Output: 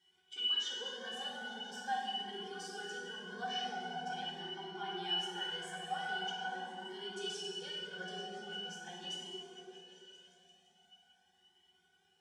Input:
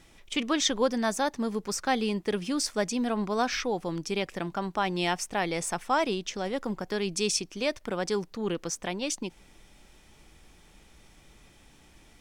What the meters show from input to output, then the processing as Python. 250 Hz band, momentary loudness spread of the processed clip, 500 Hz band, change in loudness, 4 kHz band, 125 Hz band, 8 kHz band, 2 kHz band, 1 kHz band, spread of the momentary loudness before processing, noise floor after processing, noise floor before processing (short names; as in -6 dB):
-20.5 dB, 11 LU, -17.0 dB, -10.0 dB, -2.0 dB, -17.5 dB, -18.0 dB, -7.5 dB, -9.0 dB, 6 LU, -73 dBFS, -58 dBFS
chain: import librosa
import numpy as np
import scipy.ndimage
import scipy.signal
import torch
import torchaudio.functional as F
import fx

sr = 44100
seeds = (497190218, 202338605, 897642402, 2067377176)

p1 = fx.highpass(x, sr, hz=260.0, slope=6)
p2 = np.diff(p1, prepend=0.0)
p3 = fx.rider(p2, sr, range_db=4, speed_s=2.0)
p4 = p2 + (p3 * librosa.db_to_amplitude(2.0))
p5 = fx.octave_resonator(p4, sr, note='F#', decay_s=0.14)
p6 = p5 + fx.echo_opening(p5, sr, ms=171, hz=400, octaves=1, feedback_pct=70, wet_db=-3, dry=0)
p7 = fx.rev_fdn(p6, sr, rt60_s=2.4, lf_ratio=1.3, hf_ratio=0.65, size_ms=37.0, drr_db=-5.5)
p8 = fx.comb_cascade(p7, sr, direction='rising', hz=0.43)
y = p8 * librosa.db_to_amplitude(10.5)